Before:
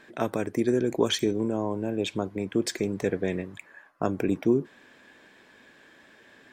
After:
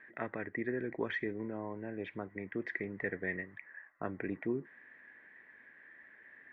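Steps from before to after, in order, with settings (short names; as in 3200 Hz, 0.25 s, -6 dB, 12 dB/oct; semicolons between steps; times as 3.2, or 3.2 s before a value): wow and flutter 25 cents; ladder low-pass 2000 Hz, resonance 85%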